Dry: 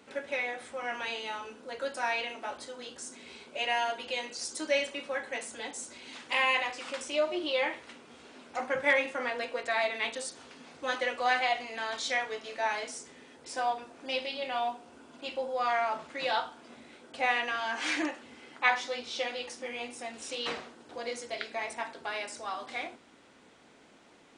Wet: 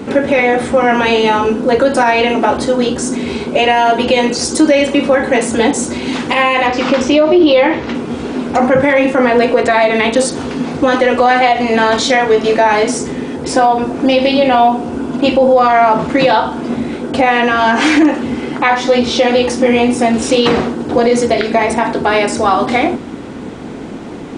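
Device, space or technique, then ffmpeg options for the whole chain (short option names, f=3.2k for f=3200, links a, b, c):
mastering chain: -filter_complex "[0:a]equalizer=f=590:t=o:w=0.45:g=-4,acompressor=threshold=-34dB:ratio=2.5,tiltshelf=f=740:g=9.5,alimiter=level_in=30dB:limit=-1dB:release=50:level=0:latency=1,asettb=1/sr,asplit=3[a][b][c];[a]atrim=end=6.664[d];[b]atrim=start=6.66:end=7.95,asetpts=PTS-STARTPTS,afade=t=in:d=0.004:c=qsin,afade=t=out:st=1.286:d=0.004:c=qsin,lowpass=f=6.2k:w=0.5412,lowpass=f=6.2k:w=1.3066[e];[c]atrim=start=7.946[f];[d][e]acrossfade=d=0.004:c1=hsin:c2=qsin[g];[g][f]acrossfade=d=0.004:c1=qsin:c2=hsin,volume=-1dB"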